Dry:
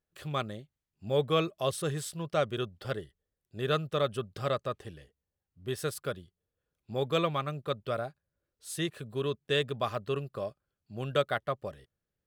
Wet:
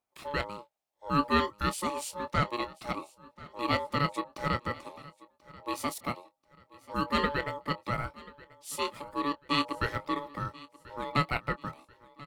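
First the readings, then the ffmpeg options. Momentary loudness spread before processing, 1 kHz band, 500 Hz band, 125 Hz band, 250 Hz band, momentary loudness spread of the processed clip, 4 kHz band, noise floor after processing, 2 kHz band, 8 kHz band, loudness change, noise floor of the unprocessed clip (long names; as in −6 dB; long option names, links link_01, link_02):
12 LU, +5.5 dB, −5.5 dB, −1.5 dB, +3.5 dB, 19 LU, 0.0 dB, −75 dBFS, +4.5 dB, +0.5 dB, +0.5 dB, below −85 dBFS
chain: -filter_complex "[0:a]lowshelf=frequency=150:gain=-4,aeval=exprs='val(0)*sin(2*PI*720*n/s)':channel_layout=same,asplit=2[link_01][link_02];[link_02]adelay=25,volume=-13dB[link_03];[link_01][link_03]amix=inputs=2:normalize=0,asplit=2[link_04][link_05];[link_05]aecho=0:1:1036|2072|3108:0.0891|0.0357|0.0143[link_06];[link_04][link_06]amix=inputs=2:normalize=0,volume=3.5dB"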